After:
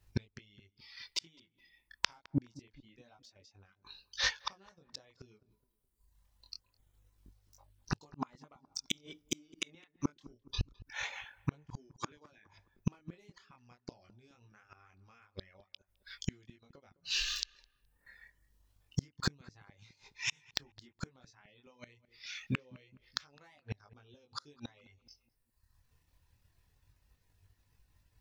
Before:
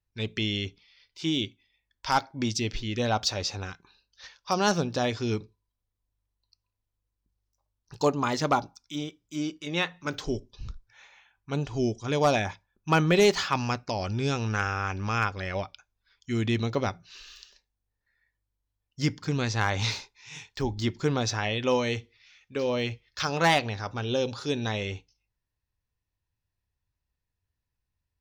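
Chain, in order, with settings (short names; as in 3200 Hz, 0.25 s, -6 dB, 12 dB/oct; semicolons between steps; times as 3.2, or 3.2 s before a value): reverb removal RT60 0.81 s; dynamic EQ 2100 Hz, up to +5 dB, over -47 dBFS, Q 3; compressor 20:1, threshold -34 dBFS, peak gain reduction 18 dB; transient shaper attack +3 dB, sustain -3 dB; chorus 0.25 Hz, delay 19.5 ms, depth 5.6 ms; flipped gate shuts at -36 dBFS, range -39 dB; 11.77–12.46 speaker cabinet 250–8300 Hz, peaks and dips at 300 Hz +6 dB, 710 Hz -9 dB, 1600 Hz +7 dB; on a send: darkening echo 0.21 s, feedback 46%, low-pass 1300 Hz, level -19.5 dB; on the sum: gain +18 dB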